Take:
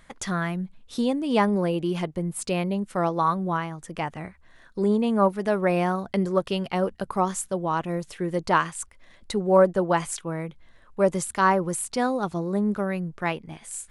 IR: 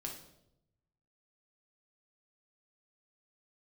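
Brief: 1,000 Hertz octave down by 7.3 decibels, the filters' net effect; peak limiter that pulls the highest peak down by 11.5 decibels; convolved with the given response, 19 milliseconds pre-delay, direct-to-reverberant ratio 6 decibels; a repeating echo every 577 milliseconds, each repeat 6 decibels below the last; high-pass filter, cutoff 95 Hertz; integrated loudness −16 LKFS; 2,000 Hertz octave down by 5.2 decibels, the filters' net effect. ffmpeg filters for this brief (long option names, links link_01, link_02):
-filter_complex "[0:a]highpass=95,equalizer=frequency=1000:width_type=o:gain=-8.5,equalizer=frequency=2000:width_type=o:gain=-3.5,alimiter=limit=-20.5dB:level=0:latency=1,aecho=1:1:577|1154|1731|2308|2885|3462:0.501|0.251|0.125|0.0626|0.0313|0.0157,asplit=2[link_01][link_02];[1:a]atrim=start_sample=2205,adelay=19[link_03];[link_02][link_03]afir=irnorm=-1:irlink=0,volume=-4.5dB[link_04];[link_01][link_04]amix=inputs=2:normalize=0,volume=12dB"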